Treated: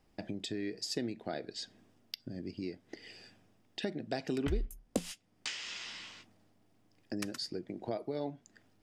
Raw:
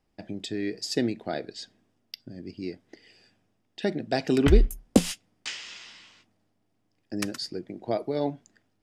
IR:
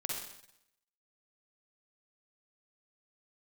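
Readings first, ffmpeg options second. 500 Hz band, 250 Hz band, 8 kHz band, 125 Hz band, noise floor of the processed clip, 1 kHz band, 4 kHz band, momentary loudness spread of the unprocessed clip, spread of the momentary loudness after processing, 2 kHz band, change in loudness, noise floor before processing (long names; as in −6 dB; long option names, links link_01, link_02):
−10.5 dB, −10.5 dB, −7.5 dB, −12.0 dB, −70 dBFS, −9.5 dB, −5.5 dB, 21 LU, 13 LU, −7.5 dB, −11.0 dB, −73 dBFS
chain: -af "acompressor=threshold=-45dB:ratio=2.5,volume=4.5dB"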